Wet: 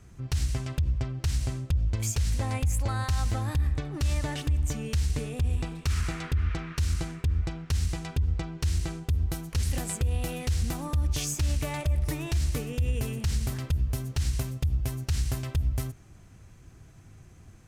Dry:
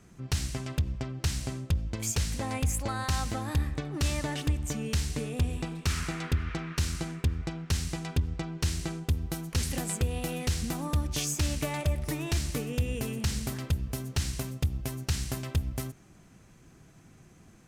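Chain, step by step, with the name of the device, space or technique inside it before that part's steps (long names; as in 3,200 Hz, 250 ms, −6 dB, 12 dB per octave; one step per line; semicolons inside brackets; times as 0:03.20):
car stereo with a boomy subwoofer (low shelf with overshoot 130 Hz +8 dB, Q 1.5; brickwall limiter −19 dBFS, peak gain reduction 11 dB)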